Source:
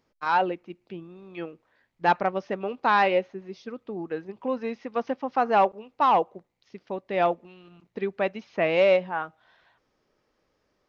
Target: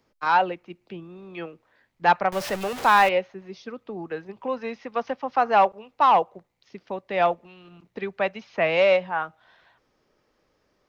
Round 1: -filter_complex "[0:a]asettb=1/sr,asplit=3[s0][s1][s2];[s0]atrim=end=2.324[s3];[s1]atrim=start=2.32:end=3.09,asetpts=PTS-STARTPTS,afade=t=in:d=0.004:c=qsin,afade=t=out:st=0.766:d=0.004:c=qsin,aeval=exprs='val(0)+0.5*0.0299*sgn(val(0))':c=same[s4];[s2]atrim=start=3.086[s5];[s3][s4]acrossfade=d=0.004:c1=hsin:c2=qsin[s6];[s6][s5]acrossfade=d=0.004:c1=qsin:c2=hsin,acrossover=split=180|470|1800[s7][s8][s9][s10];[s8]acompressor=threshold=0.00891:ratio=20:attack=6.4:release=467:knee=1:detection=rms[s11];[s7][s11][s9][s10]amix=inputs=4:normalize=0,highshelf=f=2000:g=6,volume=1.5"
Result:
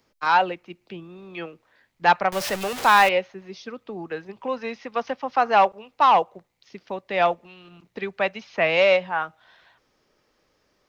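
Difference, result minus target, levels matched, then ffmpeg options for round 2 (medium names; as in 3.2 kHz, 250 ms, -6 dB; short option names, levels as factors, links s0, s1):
4 kHz band +3.0 dB
-filter_complex "[0:a]asettb=1/sr,asplit=3[s0][s1][s2];[s0]atrim=end=2.324[s3];[s1]atrim=start=2.32:end=3.09,asetpts=PTS-STARTPTS,afade=t=in:d=0.004:c=qsin,afade=t=out:st=0.766:d=0.004:c=qsin,aeval=exprs='val(0)+0.5*0.0299*sgn(val(0))':c=same[s4];[s2]atrim=start=3.086[s5];[s3][s4]acrossfade=d=0.004:c1=hsin:c2=qsin[s6];[s6][s5]acrossfade=d=0.004:c1=qsin:c2=hsin,acrossover=split=180|470|1800[s7][s8][s9][s10];[s8]acompressor=threshold=0.00891:ratio=20:attack=6.4:release=467:knee=1:detection=rms[s11];[s7][s11][s9][s10]amix=inputs=4:normalize=0,volume=1.5"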